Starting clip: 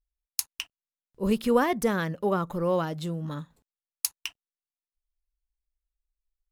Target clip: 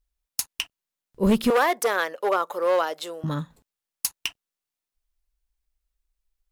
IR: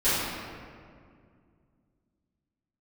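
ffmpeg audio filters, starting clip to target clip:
-filter_complex "[0:a]volume=21dB,asoftclip=hard,volume=-21dB,asettb=1/sr,asplit=3[link_01][link_02][link_03];[link_01]atrim=end=1.504[link_04];[link_02]atrim=start=1.5:end=3.24,asetpts=PTS-STARTPTS,afade=type=in:duration=0.004:curve=qsin,afade=type=out:start_time=1.736:duration=0.004:curve=qsin,highpass=frequency=450:width=0.5412,highpass=frequency=450:width=1.3066[link_05];[link_03]atrim=start=3.236[link_06];[link_04][link_05]acrossfade=duration=0.004:curve1=hsin:curve2=qsin[link_07];[link_07][link_06]acrossfade=duration=0.004:curve1=qsin:curve2=hsin,volume=7dB"

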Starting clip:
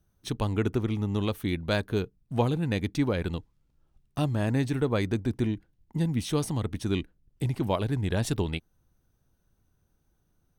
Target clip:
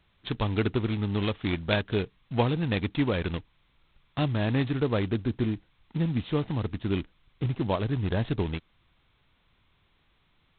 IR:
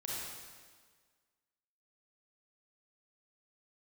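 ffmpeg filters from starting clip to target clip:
-af "asetnsamples=nb_out_samples=441:pad=0,asendcmd='4.71 highshelf g -5',highshelf=frequency=2200:gain=5.5" -ar 8000 -c:a adpcm_g726 -b:a 16k

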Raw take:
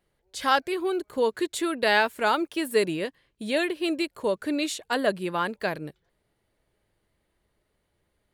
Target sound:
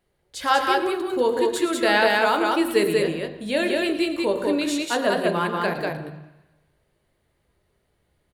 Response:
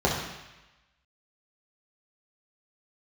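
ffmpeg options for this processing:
-filter_complex "[0:a]aecho=1:1:110.8|192.4:0.251|0.794,asettb=1/sr,asplit=3[link_01][link_02][link_03];[link_01]atrim=end=2.604[link_04];[link_02]atrim=start=2.6:end=4.78,asetpts=PTS-STARTPTS,afade=type=in:duration=0.004:curve=qsin,afade=type=out:start_time=2.176:duration=0.004:curve=qsin,aeval=exprs='val(0)+0.00126*(sin(2*PI*50*n/s)+sin(2*PI*2*50*n/s)/2+sin(2*PI*3*50*n/s)/3+sin(2*PI*4*50*n/s)/4+sin(2*PI*5*50*n/s)/5)':channel_layout=same[link_05];[link_03]atrim=start=4.776[link_06];[link_04][link_05]acrossfade=duration=0.004:curve1=hsin:curve2=qsin[link_07];[link_07][link_06]acrossfade=duration=0.004:curve1=qsin:curve2=hsin,asplit=2[link_08][link_09];[1:a]atrim=start_sample=2205,adelay=18[link_10];[link_09][link_10]afir=irnorm=-1:irlink=0,volume=-22dB[link_11];[link_08][link_11]amix=inputs=2:normalize=0,volume=1dB"

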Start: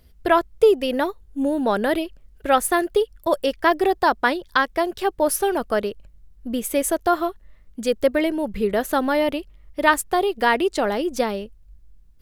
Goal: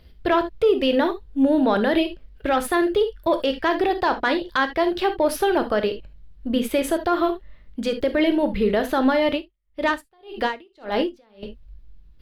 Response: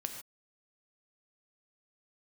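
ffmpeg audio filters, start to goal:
-filter_complex "[0:a]highshelf=frequency=5400:width_type=q:width=1.5:gain=-11,acontrast=26,alimiter=limit=-10.5dB:level=0:latency=1:release=46[link_01];[1:a]atrim=start_sample=2205,atrim=end_sample=3528[link_02];[link_01][link_02]afir=irnorm=-1:irlink=0,asettb=1/sr,asplit=3[link_03][link_04][link_05];[link_03]atrim=end=9.324[link_06];[link_04]atrim=start=9.32:end=11.43,asetpts=PTS-STARTPTS,afade=type=in:duration=0.004:curve=qsin,afade=type=out:start_time=2.106:duration=0.004:curve=qsin,aeval=exprs='val(0)*pow(10,-37*(0.5-0.5*cos(2*PI*1.8*n/s))/20)':channel_layout=same[link_07];[link_05]atrim=start=11.426[link_08];[link_06][link_07]acrossfade=duration=0.004:curve1=hsin:curve2=qsin[link_09];[link_09][link_08]acrossfade=duration=0.004:curve1=qsin:curve2=hsin"

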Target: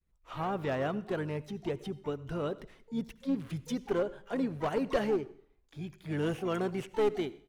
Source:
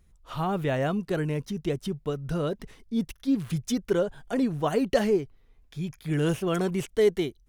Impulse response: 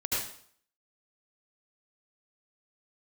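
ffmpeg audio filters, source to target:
-filter_complex "[0:a]agate=range=-33dB:threshold=-53dB:ratio=3:detection=peak,bass=frequency=250:gain=-5,treble=frequency=4000:gain=-9,aeval=exprs='clip(val(0),-1,0.0841)':channel_layout=same,asplit=3[link_01][link_02][link_03];[link_02]asetrate=29433,aresample=44100,atempo=1.49831,volume=-16dB[link_04];[link_03]asetrate=88200,aresample=44100,atempo=0.5,volume=-17dB[link_05];[link_01][link_04][link_05]amix=inputs=3:normalize=0,asplit=2[link_06][link_07];[1:a]atrim=start_sample=2205[link_08];[link_07][link_08]afir=irnorm=-1:irlink=0,volume=-24.5dB[link_09];[link_06][link_09]amix=inputs=2:normalize=0,volume=-5dB"

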